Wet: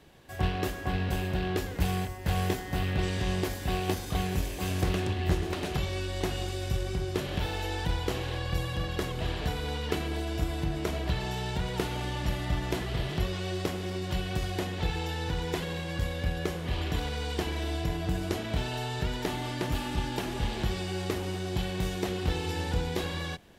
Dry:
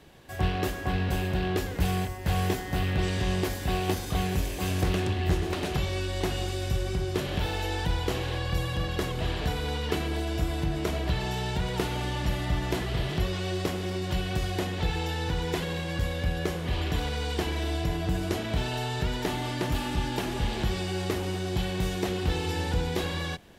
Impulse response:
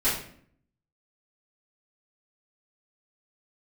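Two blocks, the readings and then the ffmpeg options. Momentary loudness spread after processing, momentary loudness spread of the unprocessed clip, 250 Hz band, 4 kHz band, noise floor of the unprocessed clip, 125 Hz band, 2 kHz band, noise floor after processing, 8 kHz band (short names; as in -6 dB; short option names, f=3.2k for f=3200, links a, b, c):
3 LU, 3 LU, -2.0 dB, -2.5 dB, -35 dBFS, -2.0 dB, -2.0 dB, -38 dBFS, -2.0 dB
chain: -af "aeval=exprs='0.224*(cos(1*acos(clip(val(0)/0.224,-1,1)))-cos(1*PI/2))+0.0178*(cos(3*acos(clip(val(0)/0.224,-1,1)))-cos(3*PI/2))+0.00158*(cos(6*acos(clip(val(0)/0.224,-1,1)))-cos(6*PI/2))+0.00158*(cos(7*acos(clip(val(0)/0.224,-1,1)))-cos(7*PI/2))':c=same"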